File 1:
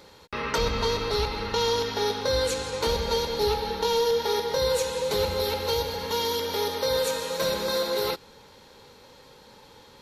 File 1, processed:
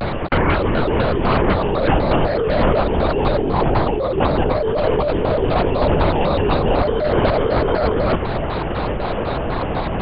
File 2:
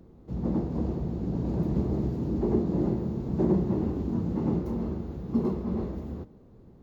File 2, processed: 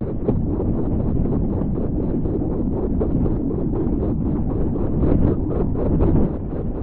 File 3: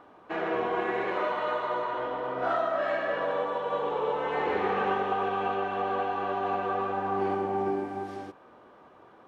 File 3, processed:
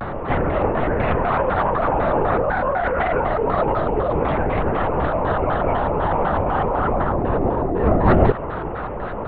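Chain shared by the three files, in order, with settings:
high-shelf EQ 2,500 Hz −10.5 dB
brickwall limiter −23.5 dBFS
compressor whose output falls as the input rises −40 dBFS, ratio −1
high-frequency loss of the air 180 metres
linear-prediction vocoder at 8 kHz whisper
pitch modulation by a square or saw wave square 4 Hz, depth 250 cents
normalise the peak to −3 dBFS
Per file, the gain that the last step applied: +24.0, +20.5, +21.5 decibels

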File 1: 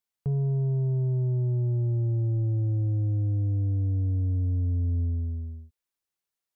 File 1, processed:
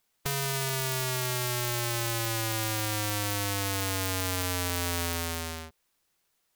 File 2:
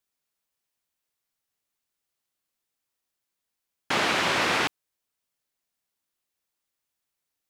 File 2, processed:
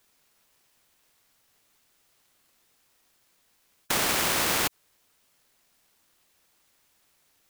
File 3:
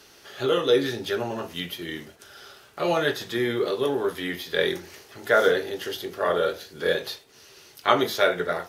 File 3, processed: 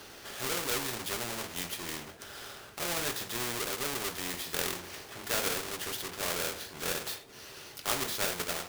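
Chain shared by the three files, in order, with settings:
each half-wave held at its own peak
every bin compressed towards the loudest bin 2 to 1
normalise the peak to −12 dBFS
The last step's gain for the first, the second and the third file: +11.5, 0.0, −9.0 decibels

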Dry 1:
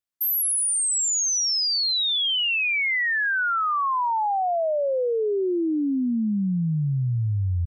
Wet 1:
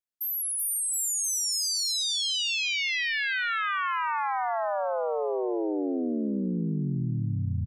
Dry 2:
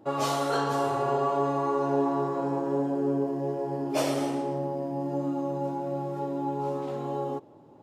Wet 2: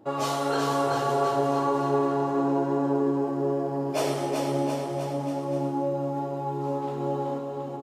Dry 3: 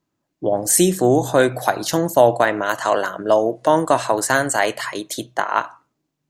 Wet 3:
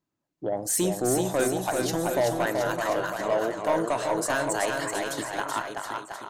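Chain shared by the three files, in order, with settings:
soft clipping −9.5 dBFS
on a send: bouncing-ball delay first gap 380 ms, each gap 0.9×, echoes 5
on the sum: loudness normalisation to −27 LKFS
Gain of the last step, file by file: −7.0, 0.0, −8.0 decibels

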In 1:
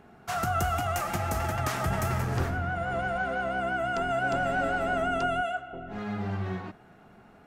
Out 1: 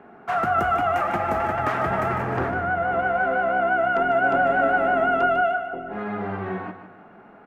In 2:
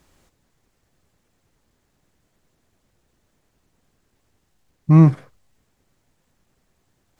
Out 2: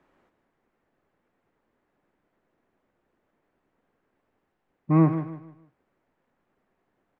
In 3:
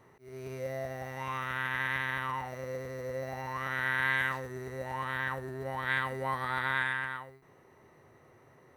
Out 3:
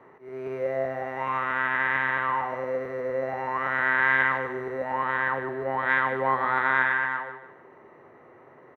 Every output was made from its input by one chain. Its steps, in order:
three-way crossover with the lows and the highs turned down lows −15 dB, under 210 Hz, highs −24 dB, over 2,400 Hz
on a send: repeating echo 151 ms, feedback 33%, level −10.5 dB
on the sum: normalise the peak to −9 dBFS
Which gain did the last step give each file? +8.0, −2.0, +9.0 decibels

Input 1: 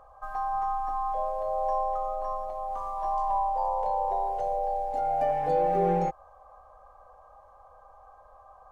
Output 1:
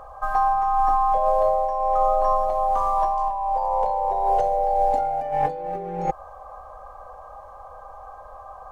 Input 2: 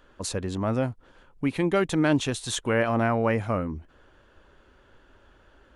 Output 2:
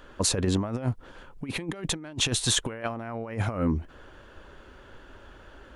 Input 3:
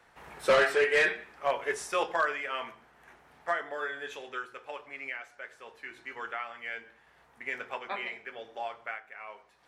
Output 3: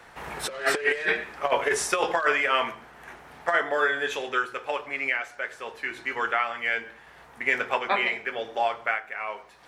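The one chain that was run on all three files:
compressor whose output falls as the input rises −30 dBFS, ratio −0.5
normalise the peak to −9 dBFS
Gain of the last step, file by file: +9.5, +2.5, +8.5 decibels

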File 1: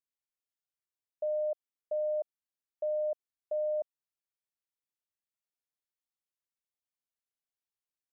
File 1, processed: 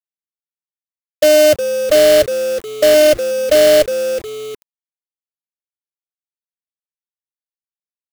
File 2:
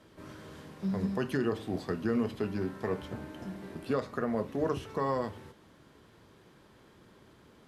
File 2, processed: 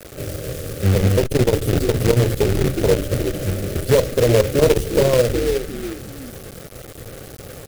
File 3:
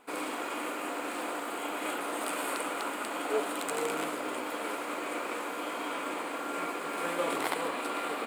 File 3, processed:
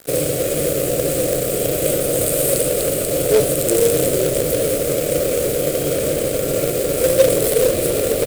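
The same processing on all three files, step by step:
sub-octave generator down 1 octave, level 0 dB
drawn EQ curve 130 Hz 0 dB, 220 Hz −12 dB, 380 Hz −2 dB, 550 Hz +7 dB, 830 Hz −20 dB, 1,600 Hz −20 dB, 14,000 Hz +9 dB
on a send: echo with shifted repeats 362 ms, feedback 32%, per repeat −88 Hz, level −10 dB
on the sum: log-companded quantiser 4 bits
parametric band 940 Hz −9 dB 0.36 octaves
notch filter 990 Hz, Q 8.1
in parallel at −0.5 dB: brickwall limiter −26.5 dBFS
on the sum: saturating transformer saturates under 220 Hz
normalise the peak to −2 dBFS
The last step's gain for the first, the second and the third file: +17.5, +13.5, +13.0 decibels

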